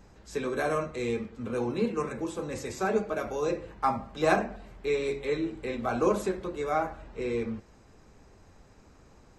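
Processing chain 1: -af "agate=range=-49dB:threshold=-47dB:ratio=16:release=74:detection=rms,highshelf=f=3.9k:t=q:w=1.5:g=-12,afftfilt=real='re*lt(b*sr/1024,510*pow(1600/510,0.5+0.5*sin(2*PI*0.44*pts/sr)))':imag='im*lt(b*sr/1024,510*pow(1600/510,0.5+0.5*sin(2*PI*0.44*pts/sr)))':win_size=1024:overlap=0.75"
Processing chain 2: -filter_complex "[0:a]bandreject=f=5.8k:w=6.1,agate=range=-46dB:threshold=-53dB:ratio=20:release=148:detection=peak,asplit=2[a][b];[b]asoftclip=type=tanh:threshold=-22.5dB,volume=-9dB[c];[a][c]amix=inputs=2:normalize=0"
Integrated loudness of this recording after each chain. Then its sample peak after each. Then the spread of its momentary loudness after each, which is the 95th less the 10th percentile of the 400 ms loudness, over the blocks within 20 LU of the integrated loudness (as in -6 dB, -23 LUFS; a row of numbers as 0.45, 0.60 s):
-32.0, -28.5 LUFS; -14.5, -7.5 dBFS; 8, 9 LU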